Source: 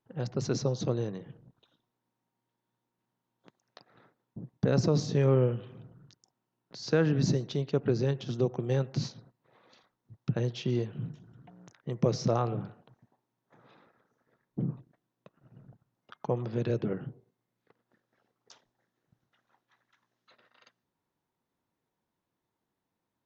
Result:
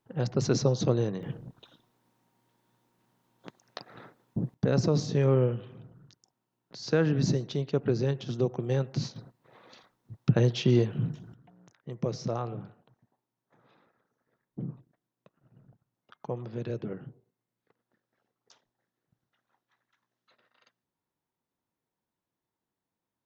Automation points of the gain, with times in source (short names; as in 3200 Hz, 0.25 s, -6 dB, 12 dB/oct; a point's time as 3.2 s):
+4.5 dB
from 1.23 s +12 dB
from 4.54 s +0.5 dB
from 9.16 s +7 dB
from 11.34 s -4.5 dB